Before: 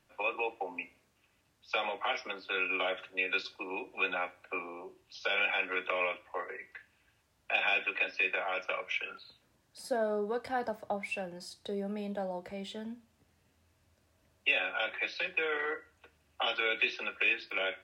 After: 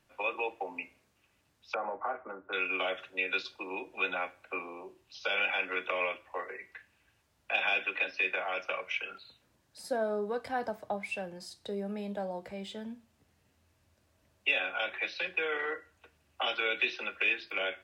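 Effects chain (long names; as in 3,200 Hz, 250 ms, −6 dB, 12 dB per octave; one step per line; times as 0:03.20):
0:01.74–0:02.53: Butterworth low-pass 1,500 Hz 36 dB per octave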